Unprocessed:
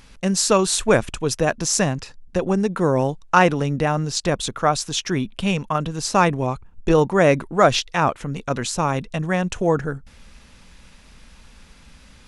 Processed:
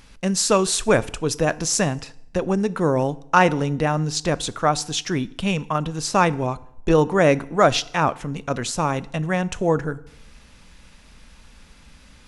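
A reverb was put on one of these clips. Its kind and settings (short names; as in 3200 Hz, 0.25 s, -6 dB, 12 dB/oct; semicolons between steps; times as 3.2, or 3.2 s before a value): FDN reverb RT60 0.75 s, low-frequency decay 0.95×, high-frequency decay 0.85×, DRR 16.5 dB; gain -1 dB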